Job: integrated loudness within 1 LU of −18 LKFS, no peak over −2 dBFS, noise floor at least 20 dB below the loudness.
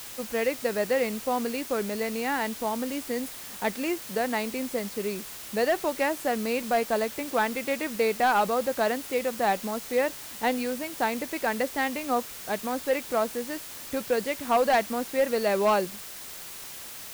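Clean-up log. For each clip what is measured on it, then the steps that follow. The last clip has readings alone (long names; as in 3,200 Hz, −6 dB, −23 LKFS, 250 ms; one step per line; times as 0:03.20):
share of clipped samples 0.4%; peaks flattened at −16.5 dBFS; background noise floor −41 dBFS; target noise floor −48 dBFS; integrated loudness −28.0 LKFS; sample peak −16.5 dBFS; target loudness −18.0 LKFS
→ clipped peaks rebuilt −16.5 dBFS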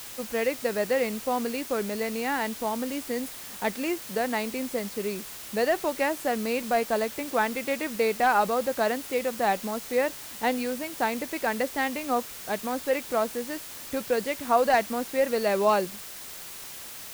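share of clipped samples 0.0%; background noise floor −41 dBFS; target noise floor −48 dBFS
→ broadband denoise 7 dB, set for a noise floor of −41 dBFS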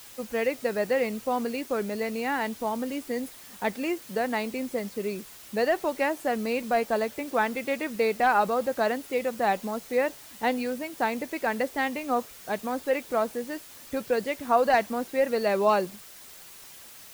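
background noise floor −47 dBFS; target noise floor −48 dBFS
→ broadband denoise 6 dB, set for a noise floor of −47 dBFS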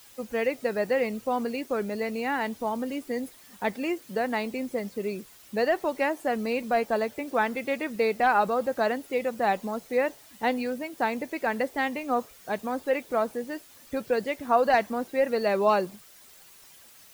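background noise floor −53 dBFS; integrated loudness −28.0 LKFS; sample peak −10.0 dBFS; target loudness −18.0 LKFS
→ level +10 dB
brickwall limiter −2 dBFS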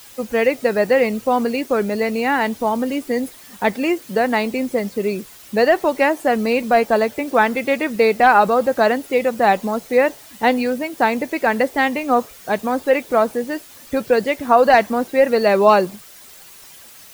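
integrated loudness −18.0 LKFS; sample peak −2.0 dBFS; background noise floor −43 dBFS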